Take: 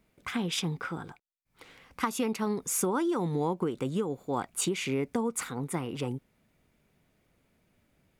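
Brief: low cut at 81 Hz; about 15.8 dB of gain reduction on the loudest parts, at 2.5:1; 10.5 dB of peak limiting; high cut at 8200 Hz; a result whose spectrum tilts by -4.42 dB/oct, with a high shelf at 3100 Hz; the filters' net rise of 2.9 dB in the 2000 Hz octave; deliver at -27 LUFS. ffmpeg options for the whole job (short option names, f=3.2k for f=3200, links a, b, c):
-af "highpass=81,lowpass=8.2k,equalizer=f=2k:t=o:g=5,highshelf=f=3.1k:g=-3.5,acompressor=threshold=-50dB:ratio=2.5,volume=21.5dB,alimiter=limit=-17dB:level=0:latency=1"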